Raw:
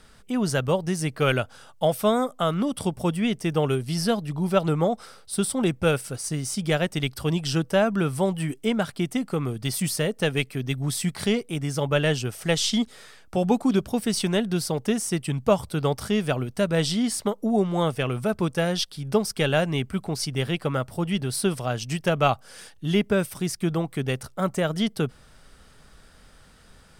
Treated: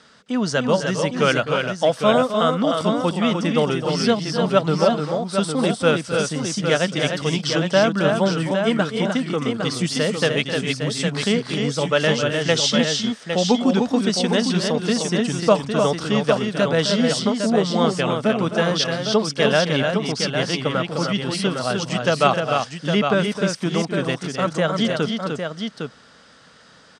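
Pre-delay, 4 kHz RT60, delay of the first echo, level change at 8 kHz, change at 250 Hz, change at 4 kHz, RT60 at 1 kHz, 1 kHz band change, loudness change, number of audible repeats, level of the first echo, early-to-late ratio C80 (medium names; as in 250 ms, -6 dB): no reverb, no reverb, 261 ms, +2.5 dB, +4.0 dB, +7.5 dB, no reverb, +6.0 dB, +5.0 dB, 3, -11.0 dB, no reverb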